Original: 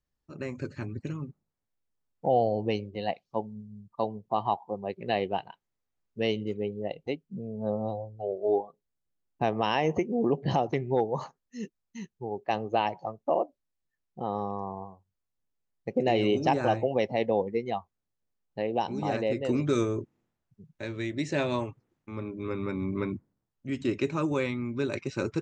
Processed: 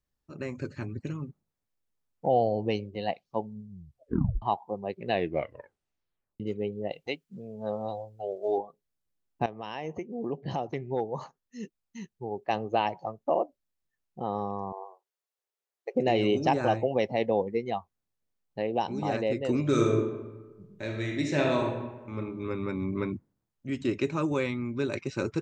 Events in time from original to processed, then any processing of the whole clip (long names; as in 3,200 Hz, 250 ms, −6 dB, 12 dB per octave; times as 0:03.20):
0:03.69: tape stop 0.73 s
0:05.10: tape stop 1.30 s
0:06.92–0:08.58: tilt shelving filter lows −7 dB, about 690 Hz
0:09.46–0:12.45: fade in, from −13.5 dB
0:14.72–0:15.95: linear-phase brick-wall high-pass 350 Hz
0:19.60–0:22.17: thrown reverb, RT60 1.2 s, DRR 1 dB